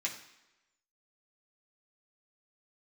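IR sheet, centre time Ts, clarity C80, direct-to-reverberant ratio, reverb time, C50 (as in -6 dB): 21 ms, 11.5 dB, -4.0 dB, 0.95 s, 9.0 dB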